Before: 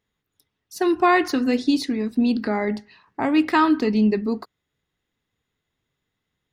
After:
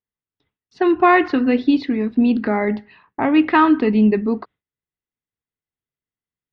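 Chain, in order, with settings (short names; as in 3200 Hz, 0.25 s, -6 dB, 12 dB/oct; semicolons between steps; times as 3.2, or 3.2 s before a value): gate with hold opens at -43 dBFS; LPF 3200 Hz 24 dB/oct; gain +4 dB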